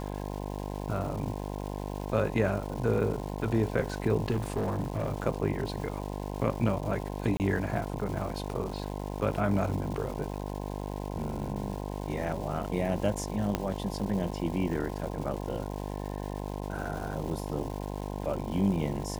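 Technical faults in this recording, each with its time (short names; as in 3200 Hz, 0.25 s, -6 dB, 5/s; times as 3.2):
buzz 50 Hz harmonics 21 -36 dBFS
crackle 560/s -39 dBFS
4.3–5.12 clipped -25 dBFS
7.37–7.4 gap 28 ms
13.55 pop -13 dBFS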